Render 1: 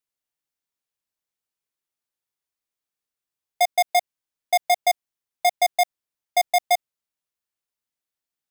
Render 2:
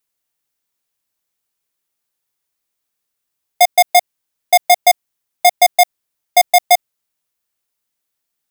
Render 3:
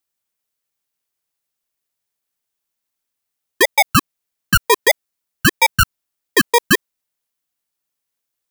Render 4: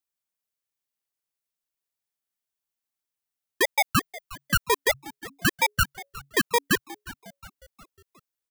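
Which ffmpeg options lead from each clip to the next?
ffmpeg -i in.wav -af "highshelf=frequency=8800:gain=5.5,volume=8.5dB" out.wav
ffmpeg -i in.wav -af "aeval=exprs='val(0)*sin(2*PI*930*n/s+930*0.75/1.6*sin(2*PI*1.6*n/s))':channel_layout=same" out.wav
ffmpeg -i in.wav -filter_complex "[0:a]asplit=5[link_01][link_02][link_03][link_04][link_05];[link_02]adelay=360,afreqshift=-140,volume=-18dB[link_06];[link_03]adelay=720,afreqshift=-280,volume=-23.7dB[link_07];[link_04]adelay=1080,afreqshift=-420,volume=-29.4dB[link_08];[link_05]adelay=1440,afreqshift=-560,volume=-35dB[link_09];[link_01][link_06][link_07][link_08][link_09]amix=inputs=5:normalize=0,volume=-9dB" out.wav

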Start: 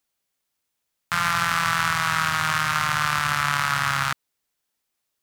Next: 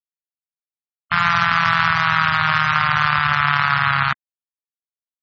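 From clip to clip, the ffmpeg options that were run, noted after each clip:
ffmpeg -i in.wav -af "afftfilt=real='re*gte(hypot(re,im),0.0447)':imag='im*gte(hypot(re,im),0.0447)':win_size=1024:overlap=0.75,volume=6dB" out.wav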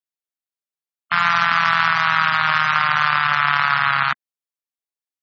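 ffmpeg -i in.wav -af "highpass=220" out.wav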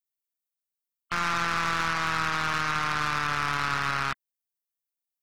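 ffmpeg -i in.wav -af "aemphasis=mode=production:type=50kf,aeval=exprs='(tanh(5.01*val(0)+0.55)-tanh(0.55))/5.01':channel_layout=same,volume=-6dB" out.wav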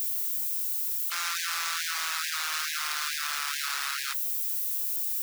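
ffmpeg -i in.wav -af "aeval=exprs='val(0)+0.5*0.0224*sgn(val(0))':channel_layout=same,aderivative,afftfilt=real='re*gte(b*sr/1024,250*pow(1600/250,0.5+0.5*sin(2*PI*2.3*pts/sr)))':imag='im*gte(b*sr/1024,250*pow(1600/250,0.5+0.5*sin(2*PI*2.3*pts/sr)))':win_size=1024:overlap=0.75,volume=6dB" out.wav

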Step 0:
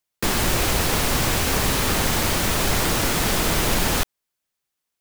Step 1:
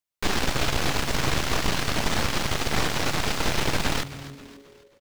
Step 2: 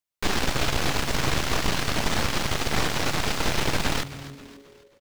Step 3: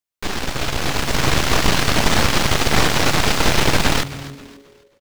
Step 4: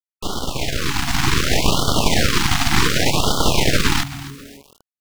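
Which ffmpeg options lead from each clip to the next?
ffmpeg -i in.wav -filter_complex "[0:a]aeval=exprs='0.422*(cos(1*acos(clip(val(0)/0.422,-1,1)))-cos(1*PI/2))+0.188*(cos(6*acos(clip(val(0)/0.422,-1,1)))-cos(6*PI/2))':channel_layout=same,acrossover=split=6500[link_01][link_02];[link_02]acompressor=threshold=-33dB:ratio=4:attack=1:release=60[link_03];[link_01][link_03]amix=inputs=2:normalize=0,asplit=5[link_04][link_05][link_06][link_07][link_08];[link_05]adelay=267,afreqshift=-140,volume=-15dB[link_09];[link_06]adelay=534,afreqshift=-280,volume=-21.9dB[link_10];[link_07]adelay=801,afreqshift=-420,volume=-28.9dB[link_11];[link_08]adelay=1068,afreqshift=-560,volume=-35.8dB[link_12];[link_04][link_09][link_10][link_11][link_12]amix=inputs=5:normalize=0,volume=-8dB" out.wav
ffmpeg -i in.wav -af anull out.wav
ffmpeg -i in.wav -af "dynaudnorm=framelen=420:gausssize=5:maxgain=11dB" out.wav
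ffmpeg -i in.wav -af "acrusher=bits=6:mix=0:aa=0.000001,afftfilt=real='re*(1-between(b*sr/1024,460*pow(2100/460,0.5+0.5*sin(2*PI*0.67*pts/sr))/1.41,460*pow(2100/460,0.5+0.5*sin(2*PI*0.67*pts/sr))*1.41))':imag='im*(1-between(b*sr/1024,460*pow(2100/460,0.5+0.5*sin(2*PI*0.67*pts/sr))/1.41,460*pow(2100/460,0.5+0.5*sin(2*PI*0.67*pts/sr))*1.41))':win_size=1024:overlap=0.75" out.wav

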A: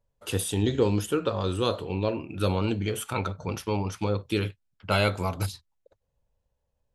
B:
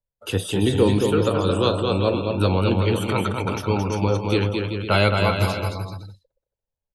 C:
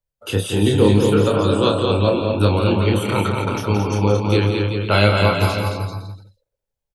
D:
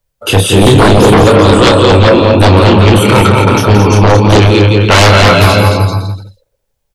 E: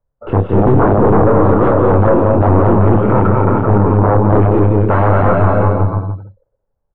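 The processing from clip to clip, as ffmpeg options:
ffmpeg -i in.wav -filter_complex "[0:a]acrossover=split=300|780|5100[link_01][link_02][link_03][link_04];[link_04]alimiter=level_in=10dB:limit=-24dB:level=0:latency=1:release=53,volume=-10dB[link_05];[link_01][link_02][link_03][link_05]amix=inputs=4:normalize=0,aecho=1:1:220|385|508.8|601.6|671.2:0.631|0.398|0.251|0.158|0.1,afftdn=noise_reduction=19:noise_floor=-48,volume=5dB" out.wav
ffmpeg -i in.wav -af "aecho=1:1:29.15|172:0.562|0.398,volume=1.5dB" out.wav
ffmpeg -i in.wav -af "aeval=exprs='0.891*sin(PI/2*3.98*val(0)/0.891)':channel_layout=same" out.wav
ffmpeg -i in.wav -af "aeval=exprs='(tanh(2*val(0)+0.65)-tanh(0.65))/2':channel_layout=same,lowpass=frequency=1300:width=0.5412,lowpass=frequency=1300:width=1.3066" out.wav

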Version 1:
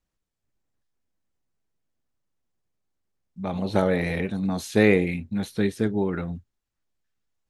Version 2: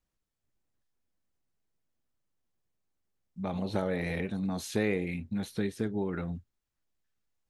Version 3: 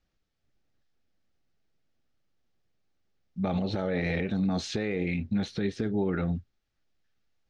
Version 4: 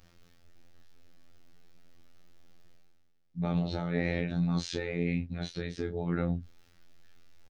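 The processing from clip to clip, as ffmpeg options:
ffmpeg -i in.wav -af "acompressor=threshold=-29dB:ratio=2,volume=-2.5dB" out.wav
ffmpeg -i in.wav -af "lowpass=frequency=5700:width=0.5412,lowpass=frequency=5700:width=1.3066,bandreject=frequency=1000:width=5.5,alimiter=level_in=2.5dB:limit=-24dB:level=0:latency=1:release=60,volume=-2.5dB,volume=7dB" out.wav
ffmpeg -i in.wav -filter_complex "[0:a]areverse,acompressor=mode=upward:threshold=-39dB:ratio=2.5,areverse,asplit=2[link_01][link_02];[link_02]adelay=27,volume=-7dB[link_03];[link_01][link_03]amix=inputs=2:normalize=0,afftfilt=real='hypot(re,im)*cos(PI*b)':imag='0':win_size=2048:overlap=0.75" out.wav

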